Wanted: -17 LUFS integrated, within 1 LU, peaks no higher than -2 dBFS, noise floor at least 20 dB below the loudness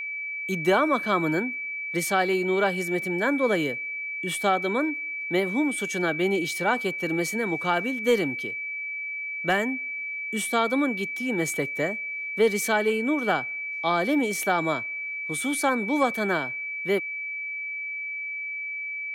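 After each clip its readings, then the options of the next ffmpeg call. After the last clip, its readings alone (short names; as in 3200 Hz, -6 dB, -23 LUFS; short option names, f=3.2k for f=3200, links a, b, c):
steady tone 2300 Hz; tone level -30 dBFS; loudness -26.0 LUFS; peak -11.0 dBFS; loudness target -17.0 LUFS
-> -af "bandreject=f=2.3k:w=30"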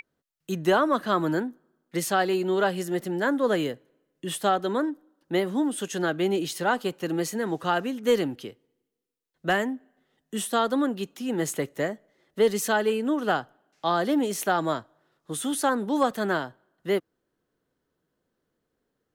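steady tone none; loudness -26.5 LUFS; peak -12.0 dBFS; loudness target -17.0 LUFS
-> -af "volume=9.5dB"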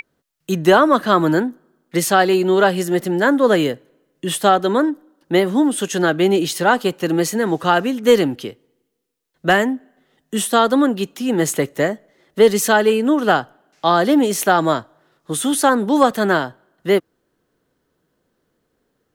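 loudness -17.0 LUFS; peak -2.5 dBFS; noise floor -70 dBFS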